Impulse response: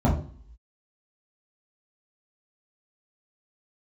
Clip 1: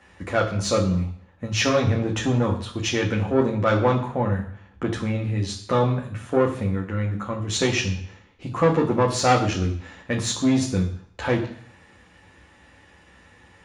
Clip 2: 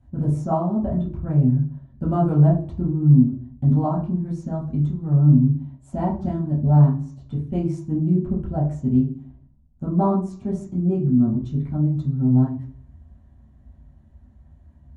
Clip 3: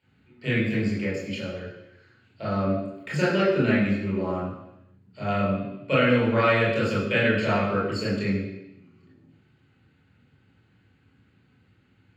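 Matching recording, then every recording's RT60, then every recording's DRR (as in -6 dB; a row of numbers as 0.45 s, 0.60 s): 2; 0.65 s, 0.45 s, 0.90 s; -1.0 dB, -6.0 dB, -6.5 dB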